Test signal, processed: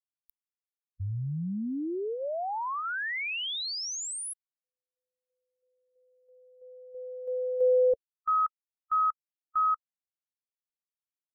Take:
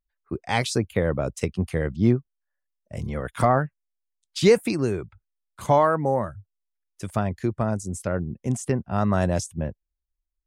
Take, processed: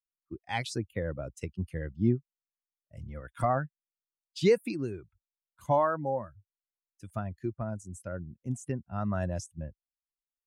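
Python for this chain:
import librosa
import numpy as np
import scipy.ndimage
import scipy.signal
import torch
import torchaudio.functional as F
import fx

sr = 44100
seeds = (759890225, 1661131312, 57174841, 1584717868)

y = fx.bin_expand(x, sr, power=1.5)
y = fx.high_shelf(y, sr, hz=5300.0, db=-5.5)
y = y * 10.0 ** (-5.5 / 20.0)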